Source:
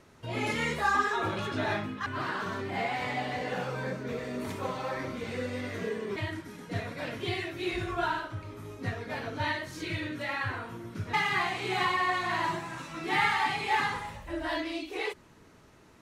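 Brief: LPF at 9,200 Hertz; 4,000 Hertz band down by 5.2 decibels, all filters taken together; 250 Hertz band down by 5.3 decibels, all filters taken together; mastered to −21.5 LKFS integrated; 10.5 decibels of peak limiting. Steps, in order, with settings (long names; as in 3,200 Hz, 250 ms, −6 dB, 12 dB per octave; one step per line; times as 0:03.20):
low-pass filter 9,200 Hz
parametric band 250 Hz −7.5 dB
parametric band 4,000 Hz −7 dB
level +14.5 dB
brickwall limiter −10.5 dBFS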